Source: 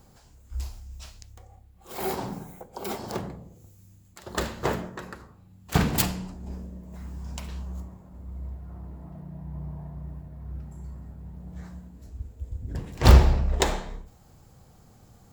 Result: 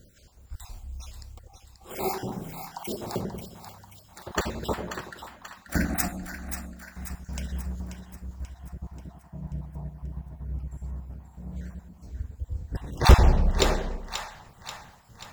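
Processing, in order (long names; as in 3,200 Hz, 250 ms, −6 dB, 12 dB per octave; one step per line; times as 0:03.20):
time-frequency cells dropped at random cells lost 38%
0:05.17–0:06.85: phaser with its sweep stopped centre 650 Hz, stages 8
echo with a time of its own for lows and highs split 770 Hz, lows 93 ms, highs 535 ms, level −8 dB
level +2 dB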